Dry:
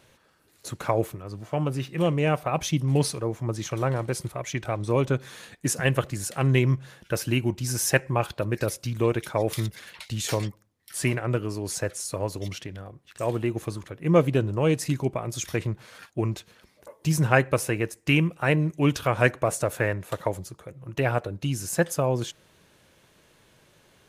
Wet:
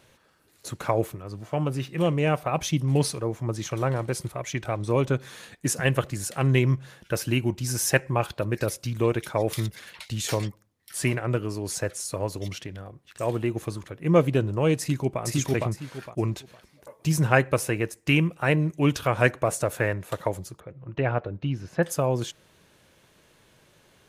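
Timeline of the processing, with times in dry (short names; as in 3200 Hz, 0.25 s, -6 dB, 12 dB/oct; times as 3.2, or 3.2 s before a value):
14.79–15.22 echo throw 0.46 s, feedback 25%, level 0 dB
20.6–21.83 air absorption 300 m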